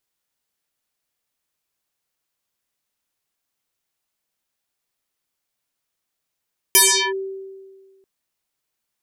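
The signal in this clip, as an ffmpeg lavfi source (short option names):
-f lavfi -i "aevalsrc='0.398*pow(10,-3*t/1.67)*sin(2*PI*386*t+10*clip(1-t/0.38,0,1)*sin(2*PI*3.52*386*t))':d=1.29:s=44100"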